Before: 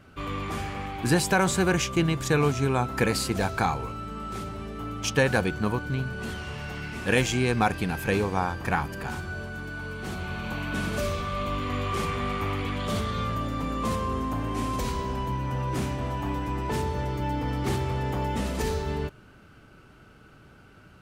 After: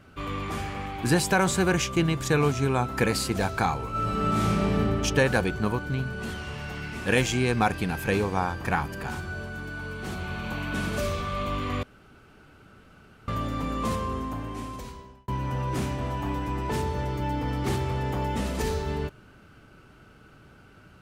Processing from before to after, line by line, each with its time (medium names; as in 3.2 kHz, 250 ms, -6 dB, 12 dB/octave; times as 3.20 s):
3.90–4.75 s: reverb throw, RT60 2.9 s, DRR -11 dB
11.83–13.28 s: room tone
13.86–15.28 s: fade out